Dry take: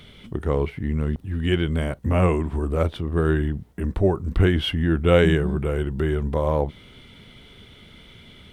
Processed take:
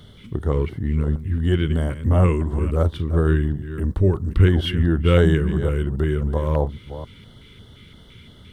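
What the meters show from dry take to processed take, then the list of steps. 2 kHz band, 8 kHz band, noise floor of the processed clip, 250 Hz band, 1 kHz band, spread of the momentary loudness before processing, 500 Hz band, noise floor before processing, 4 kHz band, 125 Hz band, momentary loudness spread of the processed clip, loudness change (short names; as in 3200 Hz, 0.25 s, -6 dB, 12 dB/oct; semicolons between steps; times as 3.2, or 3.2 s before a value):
-2.0 dB, n/a, -47 dBFS, +1.0 dB, -1.5 dB, 8 LU, -1.0 dB, -49 dBFS, -1.5 dB, +4.5 dB, 9 LU, +2.0 dB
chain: reverse delay 0.271 s, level -12 dB; bell 100 Hz +6 dB 0.99 oct; LFO notch square 2.9 Hz 710–2400 Hz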